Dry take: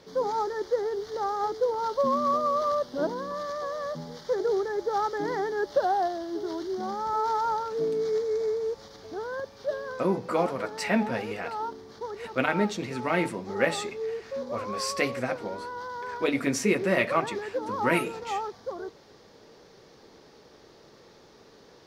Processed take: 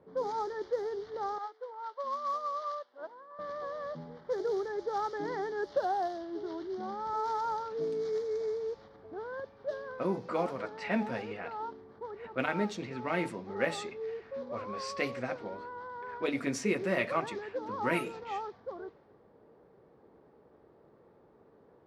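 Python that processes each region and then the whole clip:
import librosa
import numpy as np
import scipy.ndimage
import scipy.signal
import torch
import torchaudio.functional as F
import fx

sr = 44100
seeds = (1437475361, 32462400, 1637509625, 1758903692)

y = fx.chain(x, sr, fx.highpass(hz=800.0, slope=12),
    fx.upward_expand(threshold_db=-45.0, expansion=1.5), at=(1.38, 3.39))
y = scipy.signal.sosfilt(scipy.signal.butter(2, 44.0, 'highpass', fs=sr, output='sos'), y)
y = fx.env_lowpass(y, sr, base_hz=1000.0, full_db=-22.5)
y = fx.high_shelf(y, sr, hz=8100.0, db=-5.0)
y = y * librosa.db_to_amplitude(-6.0)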